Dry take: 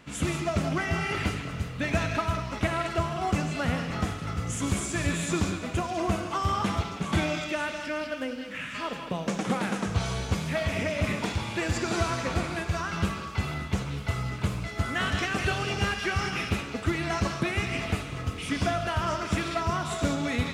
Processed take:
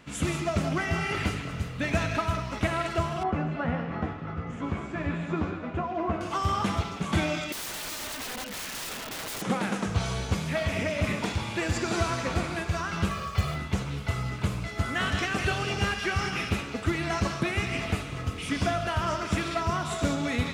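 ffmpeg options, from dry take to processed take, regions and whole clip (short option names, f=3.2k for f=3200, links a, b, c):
-filter_complex "[0:a]asettb=1/sr,asplit=3[a][b][c];[a]atrim=end=3.234[d];[b]atrim=start=3.23:end=6.21,asetpts=PTS-STARTPTS,afade=t=in:d=0.004:c=qsin,afade=t=out:st=2.976:d=0.004:c=qsin,lowpass=1.6k,lowshelf=f=92:g=-11,asplit=2[e][f];[f]adelay=13,volume=-6dB[g];[e][g]amix=inputs=2:normalize=0,atrim=end_sample=131418[h];[c]atrim=start=6.206[i];[d][h]acrossfade=d=0.004:c1=hsin:c2=qsin[j];[j][i]acrossfade=d=0.004:c1=qsin:c2=hsin,asettb=1/sr,asplit=3[k][l][m];[k]atrim=end=7.524[n];[l]atrim=start=7.52:end=9.42,asetpts=PTS-STARTPTS,afade=t=in:d=0.004:c=qsin,afade=t=out:st=1.896:d=0.004:c=qsin,aecho=1:1:4.6:0.78,atrim=end_sample=83790,aeval=exprs='(mod(35.5*val(0)+1,2)-1)/35.5':c=same[o];[m]atrim=start=9.416[p];[n][o]acrossfade=d=0.004:c1=hsin:c2=qsin[q];[q][p]acrossfade=d=0.004:c1=qsin:c2=hsin,asettb=1/sr,asplit=3[r][s][t];[r]atrim=end=13.114[u];[s]atrim=start=13.11:end=13.56,asetpts=PTS-STARTPTS,afade=t=in:d=0.004:c=qsin,afade=t=out:st=0.446:d=0.004:c=qsin,aecho=1:1:1.7:0.69,atrim=end_sample=19845,acrusher=bits=7:mode=log:mix=0:aa=0.000001[v];[t]atrim=start=13.556[w];[u][v]acrossfade=d=0.004:c1=hsin:c2=qsin[x];[x][w]acrossfade=d=0.004:c1=qsin:c2=hsin"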